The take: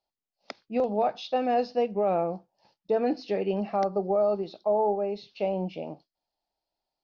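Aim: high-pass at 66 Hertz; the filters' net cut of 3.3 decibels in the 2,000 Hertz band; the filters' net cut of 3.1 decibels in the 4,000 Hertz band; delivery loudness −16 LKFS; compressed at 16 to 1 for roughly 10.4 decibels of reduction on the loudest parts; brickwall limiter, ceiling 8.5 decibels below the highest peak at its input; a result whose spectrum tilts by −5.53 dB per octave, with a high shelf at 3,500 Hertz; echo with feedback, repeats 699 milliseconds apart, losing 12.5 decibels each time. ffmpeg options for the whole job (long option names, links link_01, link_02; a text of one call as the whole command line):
ffmpeg -i in.wav -af "highpass=66,equalizer=frequency=2000:width_type=o:gain=-4.5,highshelf=frequency=3500:gain=8,equalizer=frequency=4000:width_type=o:gain=-8,acompressor=threshold=-31dB:ratio=16,alimiter=level_in=4.5dB:limit=-24dB:level=0:latency=1,volume=-4.5dB,aecho=1:1:699|1398|2097:0.237|0.0569|0.0137,volume=22dB" out.wav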